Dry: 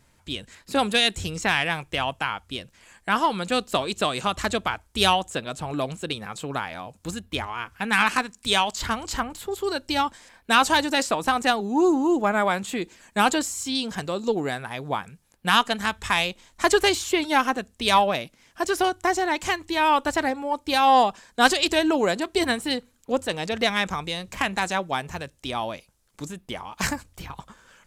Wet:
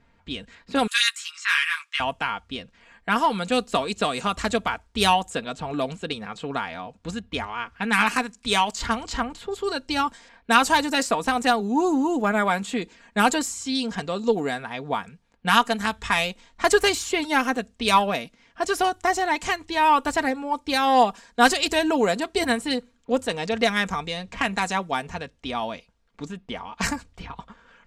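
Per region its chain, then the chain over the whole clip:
0.87–2 steep high-pass 1100 Hz 72 dB/oct + doubler 13 ms -2.5 dB
whole clip: low-pass opened by the level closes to 2800 Hz, open at -19.5 dBFS; comb 4.3 ms, depth 45%; dynamic EQ 3400 Hz, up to -4 dB, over -36 dBFS, Q 3.3

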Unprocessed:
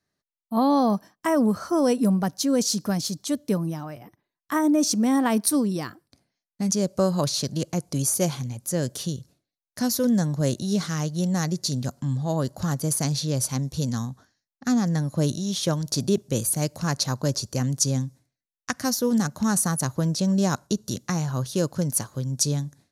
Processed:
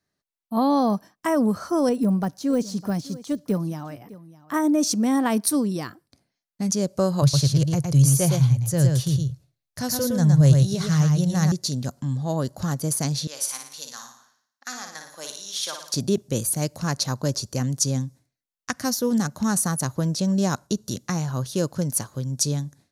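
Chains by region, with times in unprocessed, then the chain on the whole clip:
1.89–4.54 de-esser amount 90% + echo 0.607 s -18.5 dB
7.22–11.52 resonant low shelf 170 Hz +7.5 dB, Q 3 + echo 0.113 s -4 dB
13.27–15.94 HPF 1100 Hz + flutter echo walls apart 9.7 m, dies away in 0.59 s
whole clip: dry

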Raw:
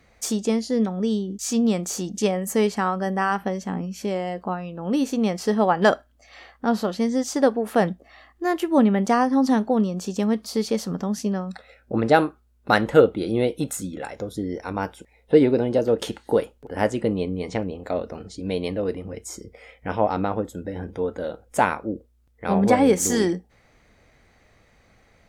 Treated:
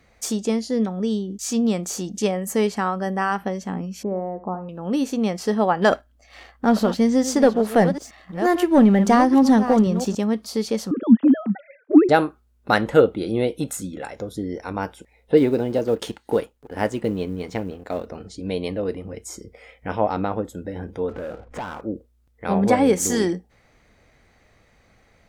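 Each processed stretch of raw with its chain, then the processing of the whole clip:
4.03–4.69 LPF 1100 Hz 24 dB/oct + flutter echo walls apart 12 m, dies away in 0.31 s
5.91–10.15 reverse delay 0.44 s, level -11.5 dB + low shelf 120 Hz +6 dB + sample leveller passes 1
10.91–12.09 sine-wave speech + bell 250 Hz +12.5 dB 1.2 oct
15.37–18.07 G.711 law mismatch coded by A + bell 570 Hz -3 dB 0.26 oct
21.09–21.81 LPF 2000 Hz + compressor 3:1, threshold -39 dBFS + sample leveller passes 3
whole clip: dry

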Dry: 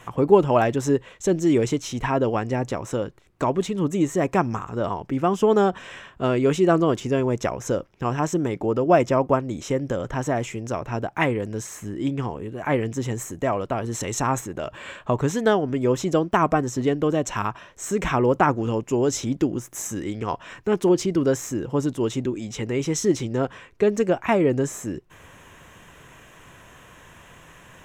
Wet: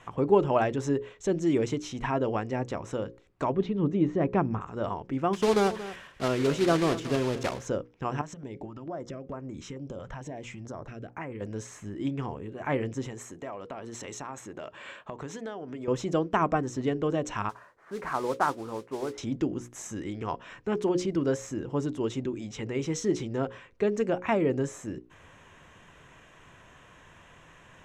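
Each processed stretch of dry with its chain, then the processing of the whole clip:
3.52–4.61 LPF 4600 Hz 24 dB/oct + tilt shelf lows +4.5 dB, about 650 Hz
5.33–7.66 block floating point 3-bit + echo 0.229 s -14.5 dB
8.21–11.41 high shelf 8900 Hz -6 dB + compressor 5:1, threshold -28 dBFS + stepped notch 4.5 Hz 330–3600 Hz
13.06–15.88 HPF 250 Hz 6 dB/oct + compressor, threshold -28 dBFS
17.49–19.18 LPF 1500 Hz 24 dB/oct + tilt +4 dB/oct + modulation noise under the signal 15 dB
whole clip: Bessel low-pass 6000 Hz, order 2; notches 60/120/180/240/300/360/420/480/540 Hz; gain -5.5 dB

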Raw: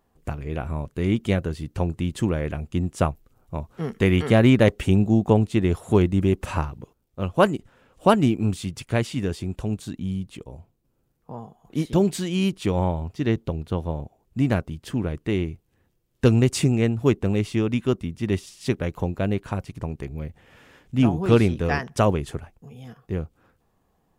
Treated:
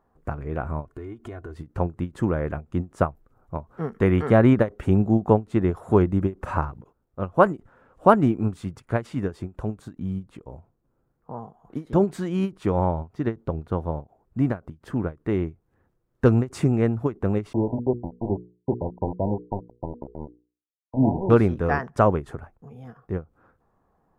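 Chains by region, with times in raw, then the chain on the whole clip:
0.85–1.56 comb 2.8 ms, depth 88% + compressor 10:1, threshold -33 dBFS
17.53–21.3 sample gate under -25.5 dBFS + brick-wall FIR low-pass 1000 Hz + notches 60/120/180/240/300/360/420/480 Hz
whole clip: EQ curve 190 Hz 0 dB, 1400 Hz +5 dB, 2900 Hz -12 dB; ending taper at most 300 dB/s; gain -1 dB

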